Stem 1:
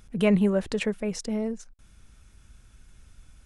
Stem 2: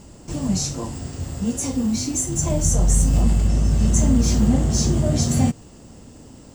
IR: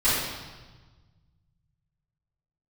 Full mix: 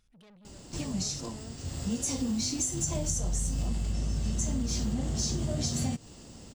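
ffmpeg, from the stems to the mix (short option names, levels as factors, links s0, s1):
-filter_complex "[0:a]acompressor=threshold=0.00708:ratio=1.5,asoftclip=type=tanh:threshold=0.015,volume=0.422,afade=t=in:st=0.69:d=0.24:silence=0.281838,asplit=2[s0][s1];[1:a]adelay=450,volume=0.531[s2];[s1]apad=whole_len=308311[s3];[s2][s3]sidechaincompress=threshold=0.00224:ratio=5:attack=16:release=449[s4];[s0][s4]amix=inputs=2:normalize=0,equalizer=f=4300:t=o:w=1.6:g=8,acompressor=threshold=0.0447:ratio=6"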